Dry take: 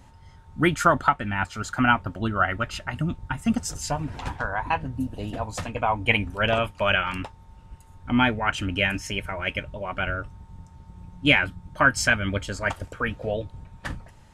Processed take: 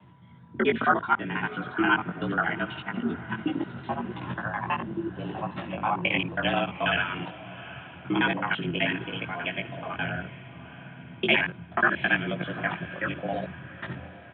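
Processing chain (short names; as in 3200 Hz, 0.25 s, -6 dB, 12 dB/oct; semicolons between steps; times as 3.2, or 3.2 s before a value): local time reversal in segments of 54 ms; chorus 0.74 Hz, delay 17.5 ms, depth 2.7 ms; frequency shift +76 Hz; downsampling 8000 Hz; on a send: diffused feedback echo 0.761 s, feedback 50%, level -16 dB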